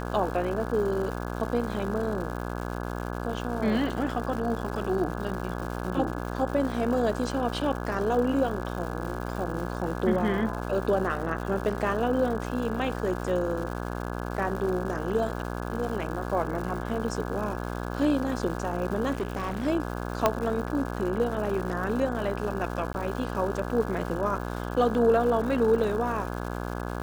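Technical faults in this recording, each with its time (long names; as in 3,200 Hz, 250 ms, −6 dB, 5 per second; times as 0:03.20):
mains buzz 60 Hz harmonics 28 −33 dBFS
surface crackle 270 per second −35 dBFS
0:19.12–0:19.67: clipping −25 dBFS
0:20.26: click −7 dBFS
0:22.93–0:22.94: drop-out 11 ms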